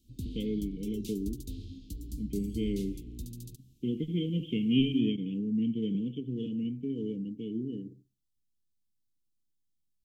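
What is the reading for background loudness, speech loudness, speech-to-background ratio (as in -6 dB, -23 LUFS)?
-43.5 LUFS, -33.0 LUFS, 10.5 dB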